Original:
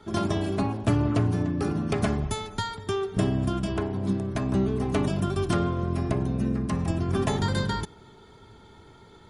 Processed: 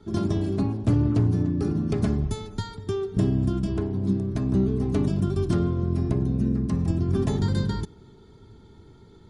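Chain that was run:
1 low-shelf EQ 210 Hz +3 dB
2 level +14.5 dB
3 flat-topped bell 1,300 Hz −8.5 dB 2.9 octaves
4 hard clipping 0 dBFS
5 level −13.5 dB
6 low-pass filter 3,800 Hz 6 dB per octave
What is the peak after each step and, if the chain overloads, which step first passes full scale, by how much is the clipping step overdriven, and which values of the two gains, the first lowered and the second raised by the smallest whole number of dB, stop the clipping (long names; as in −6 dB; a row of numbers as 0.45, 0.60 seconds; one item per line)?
−9.5, +5.0, +4.0, 0.0, −13.5, −13.5 dBFS
step 2, 4.0 dB
step 2 +10.5 dB, step 5 −9.5 dB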